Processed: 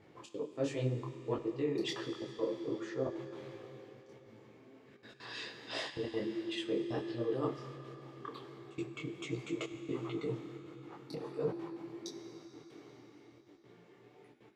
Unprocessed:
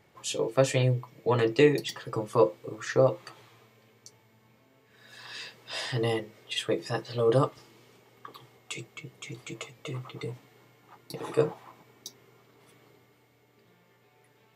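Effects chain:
Bessel low-pass filter 5,200 Hz, order 2
parametric band 310 Hz +11 dB 1.1 octaves
reversed playback
downward compressor 10 to 1, threshold −31 dBFS, peak gain reduction 22.5 dB
reversed playback
gate pattern "xxx.x.xxxxx" 176 BPM −24 dB
on a send at −7 dB: convolution reverb RT60 4.5 s, pre-delay 9 ms
on the sum: micro pitch shift up and down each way 48 cents
level +2 dB

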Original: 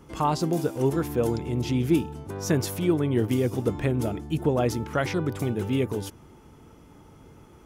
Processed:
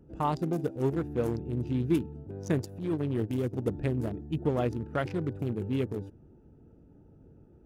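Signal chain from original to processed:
adaptive Wiener filter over 41 samples
0:02.58–0:03.53: transient designer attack −9 dB, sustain −5 dB
level −4 dB

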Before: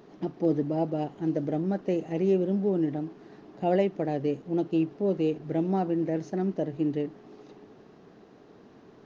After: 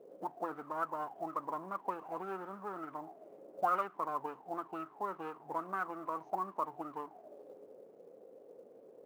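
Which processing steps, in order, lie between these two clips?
lower of the sound and its delayed copy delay 0.32 ms
envelope filter 500–1,300 Hz, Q 13, up, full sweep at −22.5 dBFS
floating-point word with a short mantissa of 4 bits
level +13 dB

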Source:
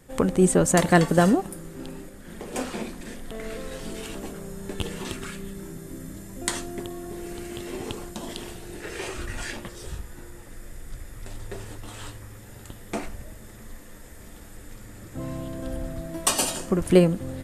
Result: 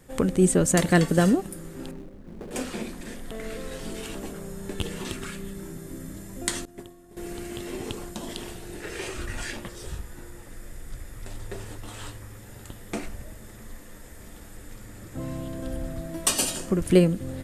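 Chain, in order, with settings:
0:01.91–0:02.51: running median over 41 samples
0:06.65–0:07.17: downward expander −25 dBFS
dynamic equaliser 880 Hz, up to −7 dB, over −40 dBFS, Q 1.1

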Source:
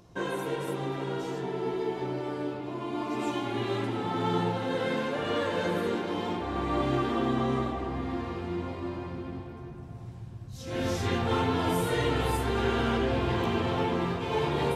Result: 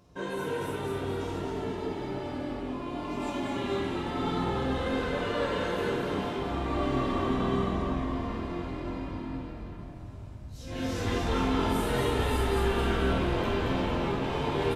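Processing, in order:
echo with shifted repeats 225 ms, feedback 55%, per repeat −42 Hz, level −3 dB
convolution reverb, pre-delay 3 ms, DRR −1 dB
level −6 dB

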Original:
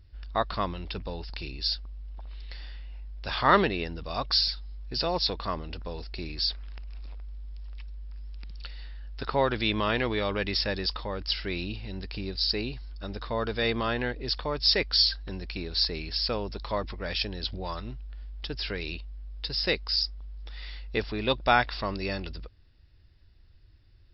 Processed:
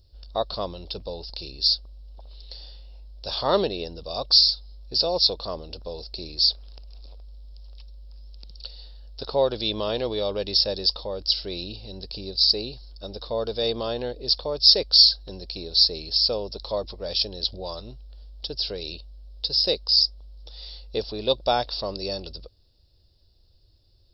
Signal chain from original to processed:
drawn EQ curve 280 Hz 0 dB, 540 Hz +10 dB, 2,000 Hz −13 dB, 4,100 Hz +12 dB
level −3.5 dB

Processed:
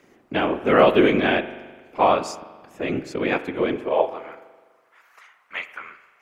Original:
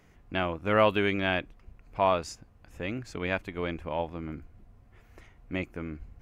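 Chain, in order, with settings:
high-pass filter sweep 310 Hz → 1,200 Hz, 0:03.69–0:04.45
random phases in short frames
spring reverb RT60 1.4 s, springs 41 ms, chirp 45 ms, DRR 12.5 dB
level +5.5 dB

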